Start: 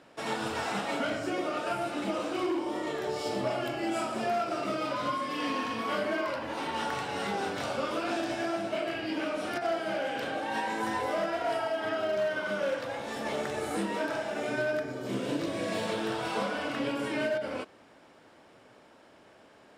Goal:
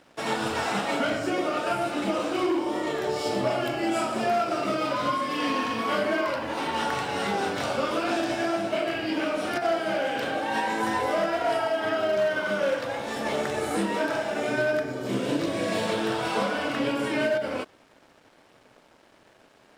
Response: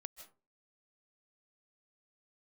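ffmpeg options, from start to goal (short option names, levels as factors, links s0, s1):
-af "acontrast=35,aeval=exprs='sgn(val(0))*max(abs(val(0))-0.002,0)':c=same"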